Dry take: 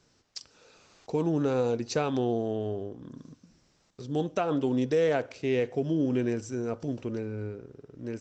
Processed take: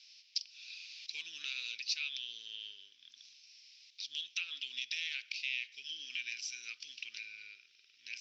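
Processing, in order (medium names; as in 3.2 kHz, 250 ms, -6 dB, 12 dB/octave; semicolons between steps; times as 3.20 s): elliptic band-pass 2.4–5.4 kHz, stop band 60 dB; compression 2.5:1, threshold -52 dBFS, peak gain reduction 11.5 dB; trim +14.5 dB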